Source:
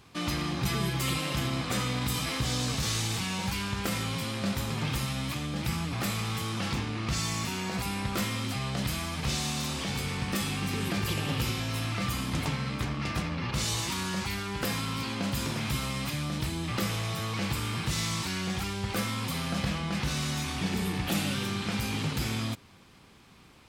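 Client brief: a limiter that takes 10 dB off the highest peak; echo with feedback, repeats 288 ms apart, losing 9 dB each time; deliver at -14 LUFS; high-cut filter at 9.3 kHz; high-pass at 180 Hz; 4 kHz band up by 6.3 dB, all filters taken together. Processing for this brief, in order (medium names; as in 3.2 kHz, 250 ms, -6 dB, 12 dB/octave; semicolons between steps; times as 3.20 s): high-pass 180 Hz; low-pass 9.3 kHz; peaking EQ 4 kHz +8 dB; peak limiter -23.5 dBFS; feedback delay 288 ms, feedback 35%, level -9 dB; trim +17 dB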